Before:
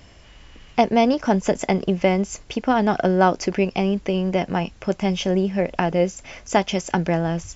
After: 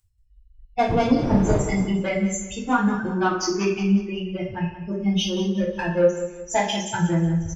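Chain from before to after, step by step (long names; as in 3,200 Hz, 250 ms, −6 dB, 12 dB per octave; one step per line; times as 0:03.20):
spectral dynamics exaggerated over time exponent 3
0:00.88–0:01.80: wind on the microphone 310 Hz −19 dBFS
0:02.76–0:03.42: flat-topped bell 750 Hz −10 dB 1.1 octaves
in parallel at −2 dB: downward compressor, threshold −32 dBFS, peak gain reduction 16 dB
on the sum: soft clipping −15.5 dBFS, distortion −15 dB
repeating echo 182 ms, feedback 36%, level −12 dB
coupled-rooms reverb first 0.52 s, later 1.7 s, from −24 dB, DRR −7.5 dB
level −3 dB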